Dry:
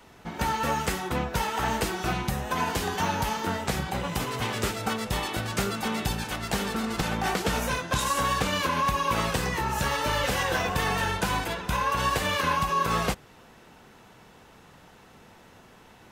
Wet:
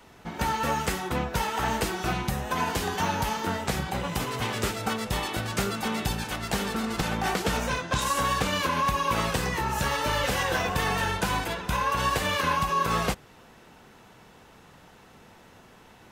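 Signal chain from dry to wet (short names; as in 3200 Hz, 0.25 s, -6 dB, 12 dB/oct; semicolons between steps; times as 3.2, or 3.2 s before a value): 7.57–8.02 bell 12000 Hz -13.5 dB 0.45 oct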